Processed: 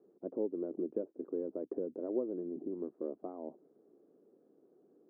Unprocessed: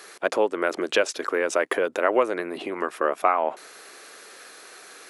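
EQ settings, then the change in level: four-pole ladder low-pass 390 Hz, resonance 25%; peaking EQ 110 Hz -11 dB 0.34 oct; 0.0 dB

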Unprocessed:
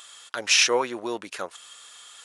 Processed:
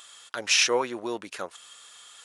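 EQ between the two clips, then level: bass shelf 320 Hz +3 dB; -2.5 dB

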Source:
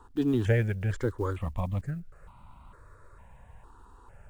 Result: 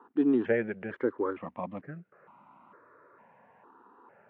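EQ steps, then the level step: high-pass 230 Hz 24 dB/octave; low-pass 2.4 kHz 24 dB/octave; bass shelf 410 Hz +4.5 dB; 0.0 dB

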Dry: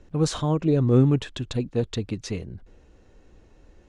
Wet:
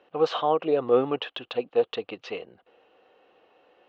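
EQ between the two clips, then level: dynamic bell 640 Hz, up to +3 dB, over -35 dBFS, Q 0.76; cabinet simulation 470–3900 Hz, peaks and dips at 490 Hz +7 dB, 750 Hz +9 dB, 1.2 kHz +7 dB, 2.9 kHz +10 dB; -1.5 dB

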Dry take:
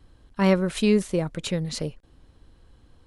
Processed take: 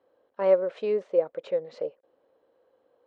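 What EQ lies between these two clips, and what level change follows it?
Gaussian low-pass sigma 1.8 samples; resonant high-pass 520 Hz, resonance Q 4.9; treble shelf 2.3 kHz -11.5 dB; -6.5 dB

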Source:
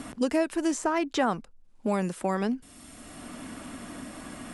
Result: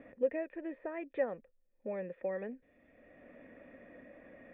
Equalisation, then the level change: cascade formant filter e; +1.0 dB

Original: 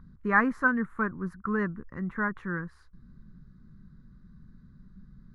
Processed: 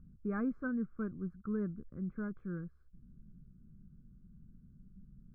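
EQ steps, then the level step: boxcar filter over 47 samples; -5.0 dB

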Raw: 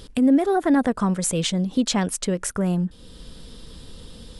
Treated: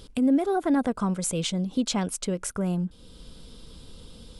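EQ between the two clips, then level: band-stop 1.8 kHz, Q 6.7; -4.5 dB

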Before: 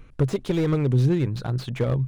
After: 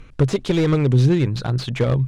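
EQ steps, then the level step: distance through air 52 m; treble shelf 2.6 kHz +8 dB; +4.5 dB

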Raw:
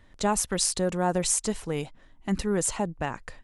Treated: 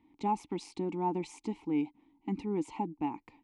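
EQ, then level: vowel filter u; peaking EQ 1.6 kHz -5.5 dB 1.5 oct; treble shelf 8.8 kHz -10 dB; +8.5 dB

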